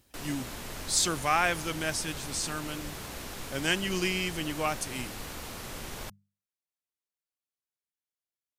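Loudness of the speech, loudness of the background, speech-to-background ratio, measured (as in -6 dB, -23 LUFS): -30.5 LUFS, -40.0 LUFS, 9.5 dB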